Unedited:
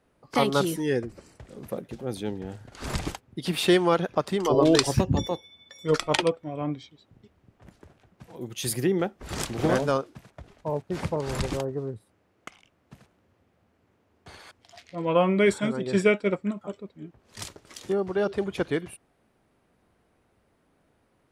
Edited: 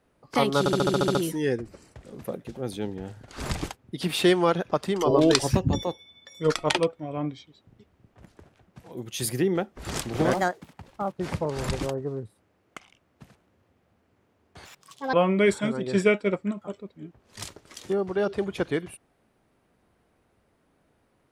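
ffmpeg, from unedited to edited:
-filter_complex "[0:a]asplit=13[s0][s1][s2][s3][s4][s5][s6][s7][s8][s9][s10][s11][s12];[s0]atrim=end=0.662[s13];[s1]atrim=start=0.588:end=0.662[s14];[s2]atrim=start=0.588:end=0.662[s15];[s3]atrim=start=0.588:end=0.662[s16];[s4]atrim=start=0.588:end=0.662[s17];[s5]atrim=start=0.588:end=0.662[s18];[s6]atrim=start=0.588:end=0.662[s19];[s7]atrim=start=0.588:end=0.662[s20];[s8]atrim=start=0.588:end=9.774[s21];[s9]atrim=start=9.77:end=10.85,asetpts=PTS-STARTPTS,asetrate=58653,aresample=44100[s22];[s10]atrim=start=10.846:end=14.364[s23];[s11]atrim=start=14.36:end=15.13,asetpts=PTS-STARTPTS,asetrate=70560,aresample=44100,atrim=end_sample=21223,asetpts=PTS-STARTPTS[s24];[s12]atrim=start=15.126[s25];[s13][s14]acrossfade=d=0.004:c1=hsin:c2=hsin[s26];[s26][s15]acrossfade=d=0.004:c1=hsin:c2=hsin[s27];[s27][s16]acrossfade=d=0.004:c1=hsin:c2=hsin[s28];[s28][s17]acrossfade=d=0.004:c1=hsin:c2=hsin[s29];[s29][s18]acrossfade=d=0.004:c1=hsin:c2=hsin[s30];[s30][s19]acrossfade=d=0.004:c1=hsin:c2=hsin[s31];[s31][s20]acrossfade=d=0.004:c1=hsin:c2=hsin[s32];[s32][s21]acrossfade=d=0.004:c1=hsin:c2=hsin[s33];[s33][s22]acrossfade=d=0.004:c1=hsin:c2=hsin[s34];[s34][s23]acrossfade=d=0.004:c1=hsin:c2=hsin[s35];[s35][s24]acrossfade=d=0.004:c1=hsin:c2=hsin[s36];[s36][s25]acrossfade=d=0.004:c1=hsin:c2=hsin"

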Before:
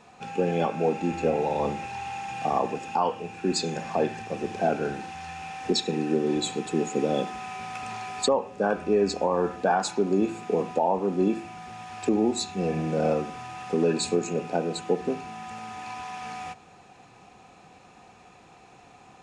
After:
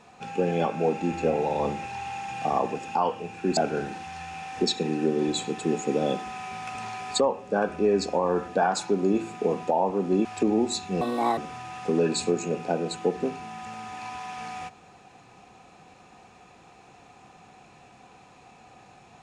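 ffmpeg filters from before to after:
-filter_complex "[0:a]asplit=5[s0][s1][s2][s3][s4];[s0]atrim=end=3.572[s5];[s1]atrim=start=4.648:end=11.332[s6];[s2]atrim=start=11.908:end=12.674[s7];[s3]atrim=start=12.67:end=13.22,asetpts=PTS-STARTPTS,asetrate=66591,aresample=44100[s8];[s4]atrim=start=13.216[s9];[s5][s6]acrossfade=d=0.004:c1=hsin:c2=hsin[s10];[s10][s7]acrossfade=d=0.004:c1=hsin:c2=hsin[s11];[s11][s8]acrossfade=d=0.004:c1=hsin:c2=hsin[s12];[s12][s9]acrossfade=d=0.004:c1=hsin:c2=hsin"

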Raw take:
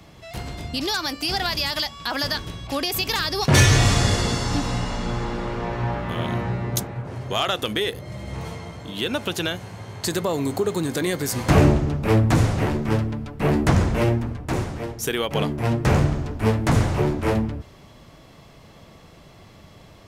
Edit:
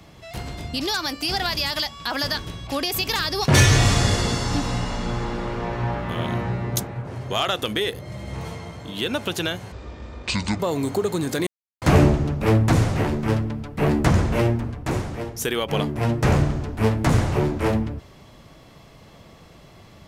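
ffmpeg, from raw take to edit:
-filter_complex "[0:a]asplit=5[s0][s1][s2][s3][s4];[s0]atrim=end=9.724[s5];[s1]atrim=start=9.72:end=10.22,asetpts=PTS-STARTPTS,asetrate=25137,aresample=44100,atrim=end_sample=38684,asetpts=PTS-STARTPTS[s6];[s2]atrim=start=10.216:end=11.09,asetpts=PTS-STARTPTS,afade=t=out:st=0.87:d=0.004:c=hsin[s7];[s3]atrim=start=11.09:end=11.44,asetpts=PTS-STARTPTS,volume=0[s8];[s4]atrim=start=11.44,asetpts=PTS-STARTPTS,afade=t=in:d=0.004:c=hsin[s9];[s5][s6]acrossfade=d=0.004:c1=hsin:c2=hsin[s10];[s7][s8][s9]concat=n=3:v=0:a=1[s11];[s10][s11]acrossfade=d=0.004:c1=hsin:c2=hsin"

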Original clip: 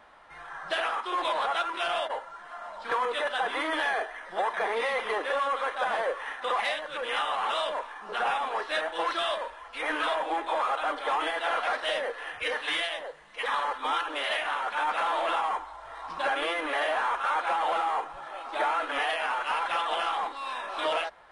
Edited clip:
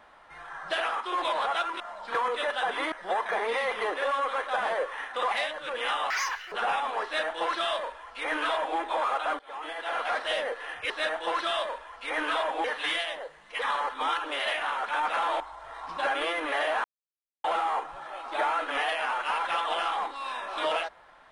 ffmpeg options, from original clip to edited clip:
-filter_complex "[0:a]asplit=11[s0][s1][s2][s3][s4][s5][s6][s7][s8][s9][s10];[s0]atrim=end=1.802[s11];[s1]atrim=start=2.568:end=3.692[s12];[s2]atrim=start=4.198:end=7.384[s13];[s3]atrim=start=7.38:end=8.1,asetpts=PTS-STARTPTS,asetrate=75411,aresample=44100,atrim=end_sample=18568,asetpts=PTS-STARTPTS[s14];[s4]atrim=start=8.096:end=10.97,asetpts=PTS-STARTPTS,afade=t=out:st=2.87:d=0.004:c=hsin:silence=0.0707946[s15];[s5]atrim=start=10.97:end=12.482,asetpts=PTS-STARTPTS,afade=t=in:d=0.78:silence=0.0707946[s16];[s6]atrim=start=8.618:end=10.362[s17];[s7]atrim=start=12.478:end=15.242[s18];[s8]atrim=start=15.608:end=17.05,asetpts=PTS-STARTPTS,afade=t=out:st=1.438:d=0.004:c=hsin[s19];[s9]atrim=start=17.05:end=17.65,asetpts=PTS-STARTPTS,volume=0[s20];[s10]atrim=start=17.65,asetpts=PTS-STARTPTS,afade=t=in:d=0.004:c=hsin[s21];[s11][s12]acrossfade=d=0.004:c1=hsin:c2=hsin[s22];[s22][s13]acrossfade=d=0.004:c1=hsin:c2=hsin[s23];[s23][s14]acrossfade=d=0.004:c1=hsin:c2=hsin[s24];[s15][s16]concat=n=2:v=0:a=1[s25];[s24][s25]acrossfade=d=0.004:c1=hsin:c2=hsin[s26];[s26][s17]acrossfade=d=0.004:c1=hsin:c2=hsin[s27];[s27][s18]acrossfade=d=0.004:c1=hsin:c2=hsin[s28];[s19][s20][s21]concat=n=3:v=0:a=1[s29];[s28][s29]acrossfade=d=0.004:c1=hsin:c2=hsin"

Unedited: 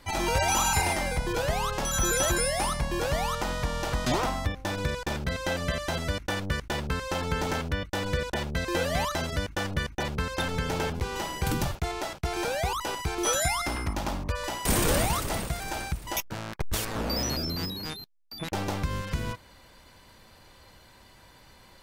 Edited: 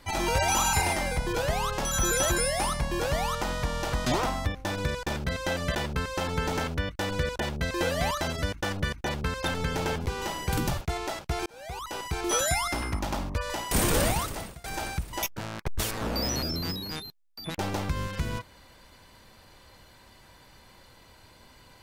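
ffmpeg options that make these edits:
-filter_complex "[0:a]asplit=4[s0][s1][s2][s3];[s0]atrim=end=5.752[s4];[s1]atrim=start=6.688:end=12.4,asetpts=PTS-STARTPTS,afade=t=out:st=5.708:d=0.004:c=hsin[s5];[s2]atrim=start=12.4:end=15.58,asetpts=PTS-STARTPTS,afade=t=in:d=0.75,afade=t=out:st=2.64:d=0.54:silence=0.0707946[s6];[s3]atrim=start=15.58,asetpts=PTS-STARTPTS,afade=t=in:d=0.004:c=hsin:silence=0.0707946[s7];[s5][s6][s7]concat=n=3:v=0:a=1[s8];[s4][s8]acrossfade=d=0.004:c1=hsin:c2=hsin"

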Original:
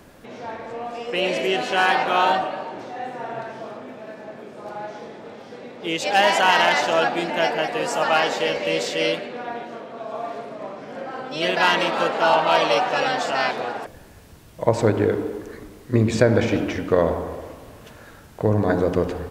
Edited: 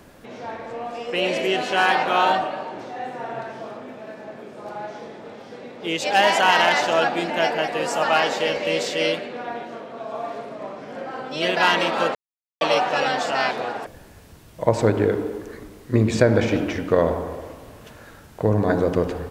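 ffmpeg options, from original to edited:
-filter_complex "[0:a]asplit=3[s0][s1][s2];[s0]atrim=end=12.15,asetpts=PTS-STARTPTS,afade=t=out:st=12.146:d=0.004:c=hsin[s3];[s1]atrim=start=12.15:end=12.61,asetpts=PTS-STARTPTS,volume=0[s4];[s2]atrim=start=12.61,asetpts=PTS-STARTPTS,afade=t=in:d=0.004:c=hsin[s5];[s3][s4][s5]concat=n=3:v=0:a=1"

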